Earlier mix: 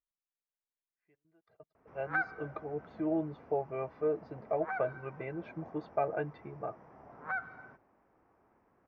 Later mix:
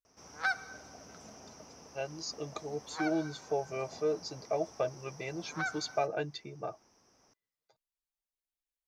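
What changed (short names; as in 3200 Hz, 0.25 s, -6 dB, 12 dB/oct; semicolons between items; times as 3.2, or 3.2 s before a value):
background: entry -1.70 s; master: remove LPF 2000 Hz 24 dB/oct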